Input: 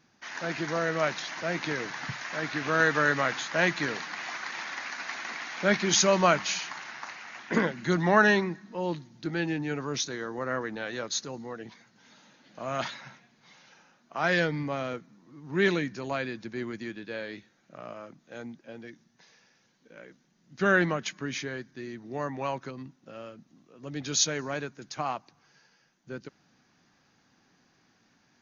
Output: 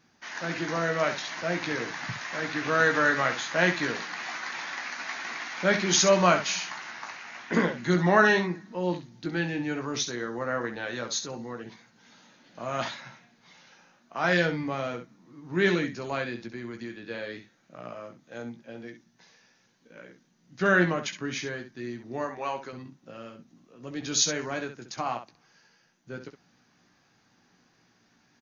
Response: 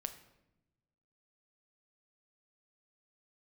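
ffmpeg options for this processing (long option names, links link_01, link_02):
-filter_complex "[0:a]asettb=1/sr,asplit=3[link_01][link_02][link_03];[link_01]atrim=end=16.344[link_04];[link_02]atrim=start=16.34:end=17.08,asetpts=PTS-STARTPTS,afade=type=in:duration=0.004:curve=qsin,afade=type=out:start_time=0.736:duration=0.004:curve=qsin,acompressor=threshold=-37dB:ratio=2.5[link_05];[link_03]atrim=start=17.076[link_06];[link_04][link_05]acrossfade=duration=0.004:curve1=hsin:curve2=qsin[link_07];[link_07][link_06]acrossfade=duration=0.004:curve1=qsin:curve2=hsin,asettb=1/sr,asplit=3[link_08][link_09][link_10];[link_08]atrim=end=22.244[link_11];[link_09]atrim=start=22.24:end=22.73,asetpts=PTS-STARTPTS,afade=type=in:duration=0.004:curve=qsin,afade=type=out:start_time=0.486:duration=0.004:curve=qsin,equalizer=frequency=130:width_type=o:width=1.6:gain=-11.5[link_12];[link_10]atrim=start=22.726[link_13];[link_11][link_12]acrossfade=duration=0.004:curve1=hsin:curve2=qsin[link_14];[link_14][link_13]acrossfade=duration=0.004:curve1=qsin:curve2=hsin,aecho=1:1:17|66:0.447|0.335"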